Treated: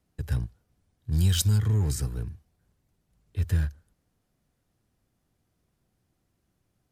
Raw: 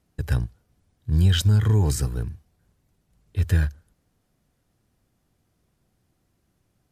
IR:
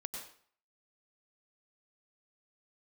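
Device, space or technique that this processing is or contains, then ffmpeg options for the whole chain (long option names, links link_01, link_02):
one-band saturation: -filter_complex "[0:a]acrossover=split=280|4700[link_01][link_02][link_03];[link_02]asoftclip=type=tanh:threshold=-34dB[link_04];[link_01][link_04][link_03]amix=inputs=3:normalize=0,asplit=3[link_05][link_06][link_07];[link_05]afade=type=out:start_time=1.11:duration=0.02[link_08];[link_06]highshelf=frequency=2500:gain=10.5,afade=type=in:start_time=1.11:duration=0.02,afade=type=out:start_time=1.57:duration=0.02[link_09];[link_07]afade=type=in:start_time=1.57:duration=0.02[link_10];[link_08][link_09][link_10]amix=inputs=3:normalize=0,volume=-4.5dB"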